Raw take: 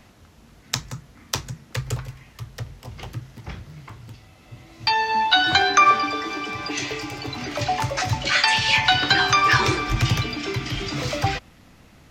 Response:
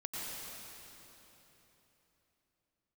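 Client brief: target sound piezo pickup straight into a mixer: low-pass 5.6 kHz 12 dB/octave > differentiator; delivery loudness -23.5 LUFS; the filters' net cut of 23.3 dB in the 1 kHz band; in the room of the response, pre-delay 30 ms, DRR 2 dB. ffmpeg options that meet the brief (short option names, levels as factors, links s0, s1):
-filter_complex "[0:a]equalizer=f=1000:t=o:g=-8.5,asplit=2[s0][s1];[1:a]atrim=start_sample=2205,adelay=30[s2];[s1][s2]afir=irnorm=-1:irlink=0,volume=0.631[s3];[s0][s3]amix=inputs=2:normalize=0,lowpass=5600,aderivative,volume=2.11"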